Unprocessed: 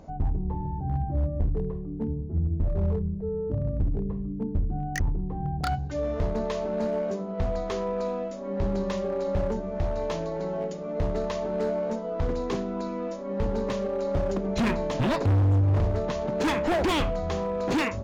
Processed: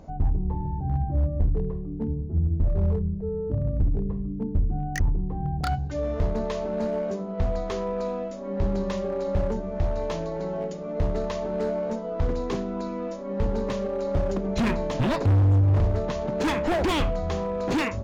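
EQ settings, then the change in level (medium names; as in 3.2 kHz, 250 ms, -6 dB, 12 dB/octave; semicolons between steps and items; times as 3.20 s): bass shelf 120 Hz +4 dB; 0.0 dB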